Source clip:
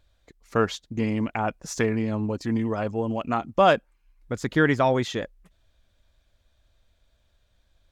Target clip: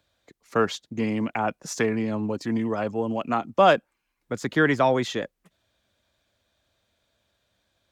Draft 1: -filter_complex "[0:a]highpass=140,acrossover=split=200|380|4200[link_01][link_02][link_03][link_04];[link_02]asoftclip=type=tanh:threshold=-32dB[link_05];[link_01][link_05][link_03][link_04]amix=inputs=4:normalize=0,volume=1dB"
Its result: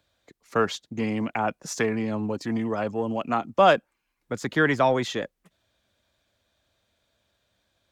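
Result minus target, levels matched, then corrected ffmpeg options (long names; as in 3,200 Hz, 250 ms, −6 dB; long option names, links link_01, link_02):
soft clipping: distortion +8 dB
-filter_complex "[0:a]highpass=140,acrossover=split=200|380|4200[link_01][link_02][link_03][link_04];[link_02]asoftclip=type=tanh:threshold=-24dB[link_05];[link_01][link_05][link_03][link_04]amix=inputs=4:normalize=0,volume=1dB"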